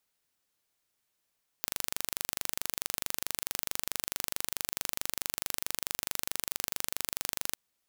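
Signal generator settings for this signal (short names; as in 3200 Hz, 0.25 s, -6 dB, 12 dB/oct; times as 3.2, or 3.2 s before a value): pulse train 24.6/s, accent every 0, -4 dBFS 5.90 s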